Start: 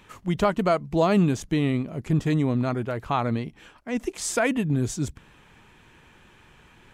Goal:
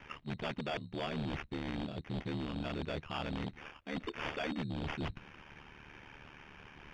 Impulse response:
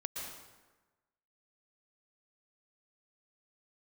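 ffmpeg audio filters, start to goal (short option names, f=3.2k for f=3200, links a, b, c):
-af "aeval=exprs='val(0)*sin(2*PI*37*n/s)':c=same,areverse,acompressor=threshold=-34dB:ratio=10,areverse,acrusher=samples=11:mix=1:aa=0.000001,aeval=exprs='0.0237*(abs(mod(val(0)/0.0237+3,4)-2)-1)':c=same,lowpass=f=3.1k:t=q:w=2,volume=1.5dB"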